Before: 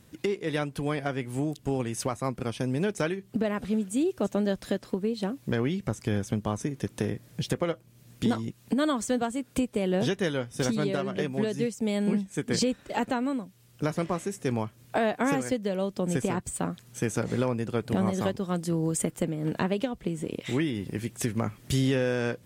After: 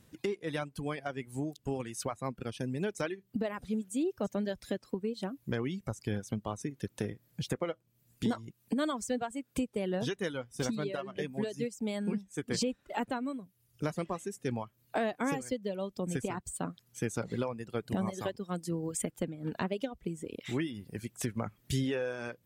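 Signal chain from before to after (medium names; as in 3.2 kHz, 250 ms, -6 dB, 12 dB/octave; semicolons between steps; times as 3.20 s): reverb removal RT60 1.7 s; trim -5 dB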